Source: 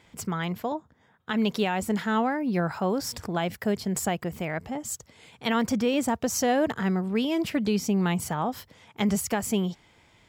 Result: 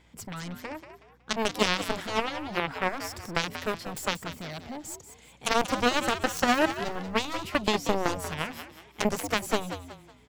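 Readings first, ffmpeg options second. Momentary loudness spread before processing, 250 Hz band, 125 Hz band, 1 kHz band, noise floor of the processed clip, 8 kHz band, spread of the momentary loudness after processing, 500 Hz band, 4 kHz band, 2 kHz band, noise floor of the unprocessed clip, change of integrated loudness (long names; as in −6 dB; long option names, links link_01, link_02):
8 LU, −7.0 dB, −7.5 dB, +0.5 dB, −56 dBFS, −3.5 dB, 14 LU, −2.0 dB, +4.0 dB, +3.0 dB, −61 dBFS, −2.0 dB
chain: -filter_complex "[0:a]aeval=exprs='val(0)+0.00126*(sin(2*PI*60*n/s)+sin(2*PI*2*60*n/s)/2+sin(2*PI*3*60*n/s)/3+sin(2*PI*4*60*n/s)/4+sin(2*PI*5*60*n/s)/5)':channel_layout=same,aeval=exprs='0.178*(cos(1*acos(clip(val(0)/0.178,-1,1)))-cos(1*PI/2))+0.0126*(cos(2*acos(clip(val(0)/0.178,-1,1)))-cos(2*PI/2))+0.0794*(cos(3*acos(clip(val(0)/0.178,-1,1)))-cos(3*PI/2))+0.00282*(cos(8*acos(clip(val(0)/0.178,-1,1)))-cos(8*PI/2))':channel_layout=same,asplit=5[link_01][link_02][link_03][link_04][link_05];[link_02]adelay=185,afreqshift=83,volume=-10.5dB[link_06];[link_03]adelay=370,afreqshift=166,volume=-19.9dB[link_07];[link_04]adelay=555,afreqshift=249,volume=-29.2dB[link_08];[link_05]adelay=740,afreqshift=332,volume=-38.6dB[link_09];[link_01][link_06][link_07][link_08][link_09]amix=inputs=5:normalize=0,volume=5.5dB"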